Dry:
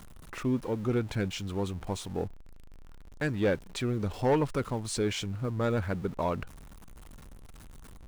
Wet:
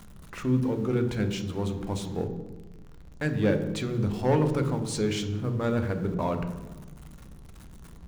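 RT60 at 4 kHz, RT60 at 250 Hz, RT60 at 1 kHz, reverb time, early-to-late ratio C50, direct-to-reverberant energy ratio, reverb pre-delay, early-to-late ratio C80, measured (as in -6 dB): 0.80 s, 1.5 s, 1.1 s, 1.2 s, 9.5 dB, 6.5 dB, 3 ms, 11.5 dB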